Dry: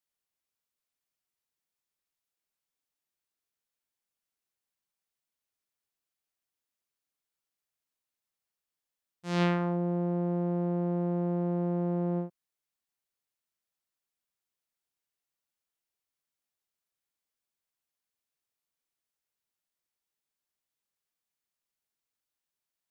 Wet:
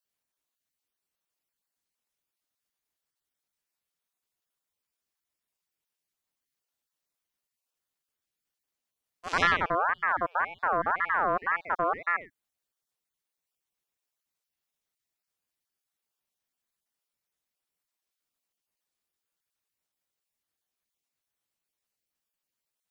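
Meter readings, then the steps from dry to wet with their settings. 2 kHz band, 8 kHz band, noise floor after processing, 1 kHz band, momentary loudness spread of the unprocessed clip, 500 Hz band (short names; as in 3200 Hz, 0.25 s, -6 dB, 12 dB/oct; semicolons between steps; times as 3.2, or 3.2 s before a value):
+17.0 dB, n/a, under -85 dBFS, +12.5 dB, 6 LU, -1.0 dB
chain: random spectral dropouts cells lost 31%; ring modulator with a swept carrier 1200 Hz, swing 30%, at 1.9 Hz; gain +6.5 dB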